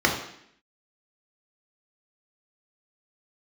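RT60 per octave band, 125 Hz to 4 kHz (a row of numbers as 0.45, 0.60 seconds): 0.65, 0.80, 0.70, 0.70, 0.75, 0.70 seconds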